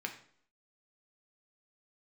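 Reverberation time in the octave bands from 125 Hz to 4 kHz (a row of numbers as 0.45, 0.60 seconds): 0.55, 0.65, 0.65, 0.60, 0.55, 0.50 seconds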